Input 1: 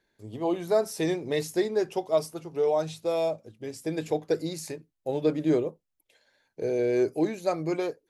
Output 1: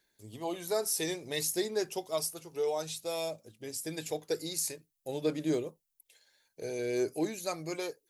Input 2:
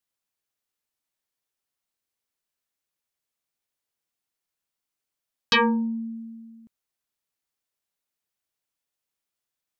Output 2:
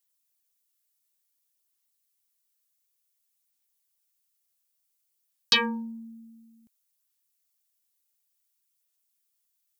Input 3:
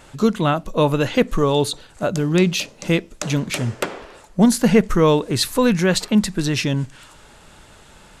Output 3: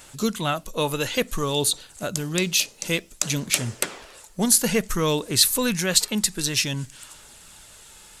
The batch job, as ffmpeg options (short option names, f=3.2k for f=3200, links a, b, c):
-af "aphaser=in_gain=1:out_gain=1:delay=2.4:decay=0.24:speed=0.56:type=sinusoidal,crystalizer=i=5.5:c=0,volume=-9dB"